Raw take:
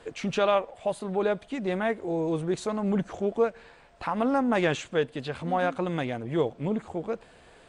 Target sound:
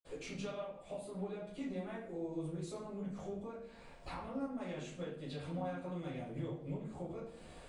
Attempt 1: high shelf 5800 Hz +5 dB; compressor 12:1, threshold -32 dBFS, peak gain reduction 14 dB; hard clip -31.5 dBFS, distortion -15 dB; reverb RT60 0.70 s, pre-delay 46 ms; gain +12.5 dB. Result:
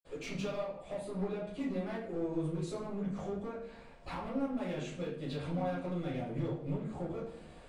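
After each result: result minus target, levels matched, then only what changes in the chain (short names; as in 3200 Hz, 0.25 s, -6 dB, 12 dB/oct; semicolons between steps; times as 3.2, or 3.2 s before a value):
compressor: peak gain reduction -6.5 dB; 8000 Hz band -3.5 dB
change: compressor 12:1, threshold -39 dBFS, peak gain reduction 20.5 dB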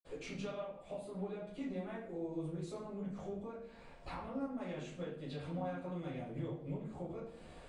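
8000 Hz band -4.0 dB
change: high shelf 5800 Hz +12.5 dB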